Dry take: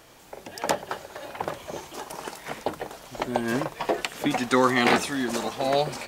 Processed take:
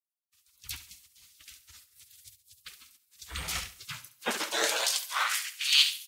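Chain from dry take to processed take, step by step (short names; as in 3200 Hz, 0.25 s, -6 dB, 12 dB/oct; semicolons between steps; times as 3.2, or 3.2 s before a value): spectral gate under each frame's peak -25 dB weak; high-pass sweep 72 Hz -> 3000 Hz, 3.6–5.71; on a send: feedback echo 69 ms, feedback 47%, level -11.5 dB; on the sum: three-band expander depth 100%; gain +6.5 dB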